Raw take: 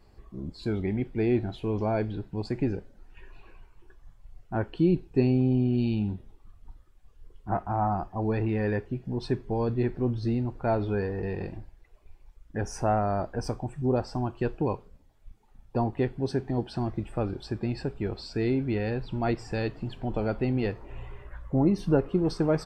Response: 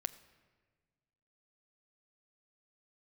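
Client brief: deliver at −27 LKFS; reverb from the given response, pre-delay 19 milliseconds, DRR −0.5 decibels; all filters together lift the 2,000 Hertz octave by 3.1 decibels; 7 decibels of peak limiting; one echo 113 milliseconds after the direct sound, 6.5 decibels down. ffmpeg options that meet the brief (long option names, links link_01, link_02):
-filter_complex "[0:a]equalizer=frequency=2000:width_type=o:gain=4,alimiter=limit=-19dB:level=0:latency=1,aecho=1:1:113:0.473,asplit=2[link_01][link_02];[1:a]atrim=start_sample=2205,adelay=19[link_03];[link_02][link_03]afir=irnorm=-1:irlink=0,volume=1dB[link_04];[link_01][link_04]amix=inputs=2:normalize=0,volume=-1dB"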